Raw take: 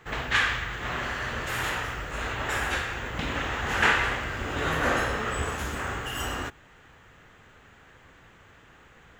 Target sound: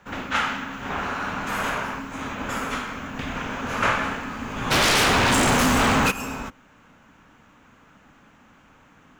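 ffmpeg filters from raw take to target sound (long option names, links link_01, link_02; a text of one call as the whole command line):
ffmpeg -i in.wav -filter_complex "[0:a]asettb=1/sr,asplit=3[link_01][link_02][link_03];[link_01]atrim=end=0.904[link_04];[link_02]atrim=start=0.9:end=1.99,asetpts=PTS-STARTPTS,afade=type=in:duration=0.004:curve=qsin,afade=type=out:start_time=1.086:duration=0.004:curve=qsin,equalizer=frequency=1300:width_type=o:width=2.3:gain=4.5[link_05];[link_03]atrim=start=1.986[link_06];[link_04][link_05]acrossfade=duration=0.004:curve1=hsin:curve2=qsin[link_07];[link_07][link_06]acrossfade=duration=0.004:curve1=qsin:curve2=hsin,afreqshift=-320,asplit=3[link_08][link_09][link_10];[link_08]afade=type=out:start_time=4.7:duration=0.02[link_11];[link_09]aeval=exprs='0.168*sin(PI/2*5.01*val(0)/0.168)':channel_layout=same,afade=type=in:start_time=4.7:duration=0.02,afade=type=out:start_time=6.1:duration=0.02[link_12];[link_10]afade=type=in:start_time=6.1:duration=0.02[link_13];[link_11][link_12][link_13]amix=inputs=3:normalize=0" out.wav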